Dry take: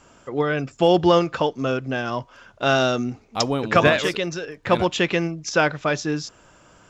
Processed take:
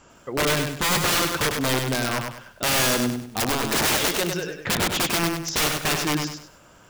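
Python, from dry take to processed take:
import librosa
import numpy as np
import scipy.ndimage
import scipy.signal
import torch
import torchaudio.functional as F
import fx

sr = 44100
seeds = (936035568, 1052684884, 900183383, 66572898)

y = (np.mod(10.0 ** (17.0 / 20.0) * x + 1.0, 2.0) - 1.0) / 10.0 ** (17.0 / 20.0)
y = fx.echo_crushed(y, sr, ms=99, feedback_pct=35, bits=9, wet_db=-5.0)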